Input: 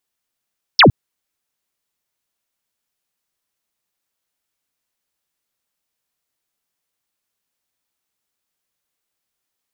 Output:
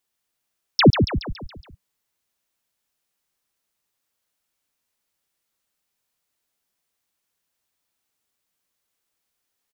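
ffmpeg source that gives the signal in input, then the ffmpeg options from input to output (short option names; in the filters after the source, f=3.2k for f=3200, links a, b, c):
-f lavfi -i "aevalsrc='0.596*clip(t/0.002,0,1)*clip((0.11-t)/0.002,0,1)*sin(2*PI*5700*0.11/log(81/5700)*(exp(log(81/5700)*t/0.11)-1))':d=0.11:s=44100"
-filter_complex "[0:a]acrossover=split=450[a][b];[b]acompressor=threshold=-20dB:ratio=4[c];[a][c]amix=inputs=2:normalize=0,asplit=2[d][e];[e]asplit=6[f][g][h][i][j][k];[f]adelay=140,afreqshift=-33,volume=-7dB[l];[g]adelay=280,afreqshift=-66,volume=-12.5dB[m];[h]adelay=420,afreqshift=-99,volume=-18dB[n];[i]adelay=560,afreqshift=-132,volume=-23.5dB[o];[j]adelay=700,afreqshift=-165,volume=-29.1dB[p];[k]adelay=840,afreqshift=-198,volume=-34.6dB[q];[l][m][n][o][p][q]amix=inputs=6:normalize=0[r];[d][r]amix=inputs=2:normalize=0"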